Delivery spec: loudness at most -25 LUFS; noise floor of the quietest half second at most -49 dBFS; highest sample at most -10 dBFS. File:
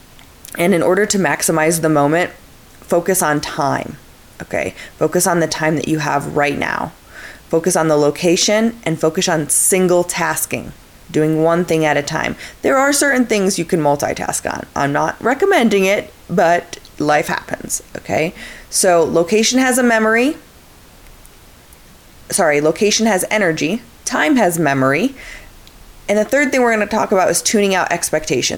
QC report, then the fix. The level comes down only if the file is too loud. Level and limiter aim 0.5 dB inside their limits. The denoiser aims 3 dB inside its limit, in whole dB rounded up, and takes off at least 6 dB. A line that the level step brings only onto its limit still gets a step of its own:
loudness -15.5 LUFS: fail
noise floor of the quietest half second -43 dBFS: fail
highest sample -4.0 dBFS: fail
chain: trim -10 dB

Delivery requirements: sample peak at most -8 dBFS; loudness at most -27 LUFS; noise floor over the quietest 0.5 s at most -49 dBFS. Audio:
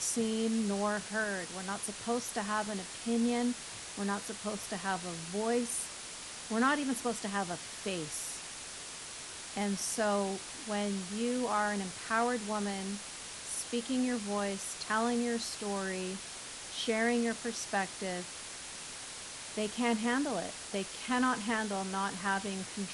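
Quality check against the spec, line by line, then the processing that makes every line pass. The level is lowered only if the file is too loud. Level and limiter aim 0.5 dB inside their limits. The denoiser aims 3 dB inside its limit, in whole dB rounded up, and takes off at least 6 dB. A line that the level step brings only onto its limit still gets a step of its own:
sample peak -17.0 dBFS: pass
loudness -34.5 LUFS: pass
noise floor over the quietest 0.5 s -45 dBFS: fail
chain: noise reduction 7 dB, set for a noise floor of -45 dBFS

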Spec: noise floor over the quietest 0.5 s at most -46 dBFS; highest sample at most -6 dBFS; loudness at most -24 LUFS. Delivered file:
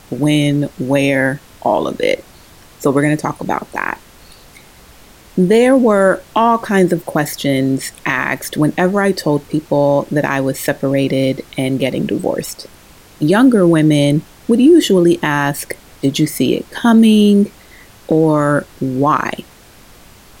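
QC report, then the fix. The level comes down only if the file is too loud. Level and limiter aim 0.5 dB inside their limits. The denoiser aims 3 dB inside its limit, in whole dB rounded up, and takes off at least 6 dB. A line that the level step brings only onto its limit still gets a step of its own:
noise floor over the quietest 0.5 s -42 dBFS: fail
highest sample -2.0 dBFS: fail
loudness -14.5 LUFS: fail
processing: trim -10 dB

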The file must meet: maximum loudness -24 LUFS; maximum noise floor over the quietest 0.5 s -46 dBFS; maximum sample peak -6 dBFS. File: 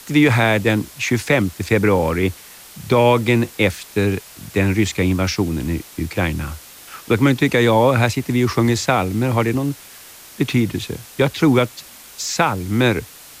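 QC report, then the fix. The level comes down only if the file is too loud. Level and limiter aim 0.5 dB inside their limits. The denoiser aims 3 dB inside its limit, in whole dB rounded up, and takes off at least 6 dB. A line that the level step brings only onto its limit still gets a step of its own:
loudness -18.5 LUFS: fail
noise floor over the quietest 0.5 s -41 dBFS: fail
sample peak -4.5 dBFS: fail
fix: trim -6 dB

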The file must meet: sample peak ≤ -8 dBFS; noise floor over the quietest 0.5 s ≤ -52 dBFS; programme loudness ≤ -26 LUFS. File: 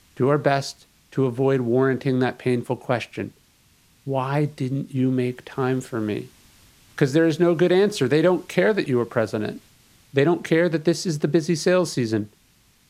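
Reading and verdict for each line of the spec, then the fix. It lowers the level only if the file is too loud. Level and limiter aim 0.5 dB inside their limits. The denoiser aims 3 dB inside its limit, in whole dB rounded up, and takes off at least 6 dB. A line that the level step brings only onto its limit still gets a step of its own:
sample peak -4.5 dBFS: fail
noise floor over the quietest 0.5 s -59 dBFS: pass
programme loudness -22.0 LUFS: fail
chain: trim -4.5 dB

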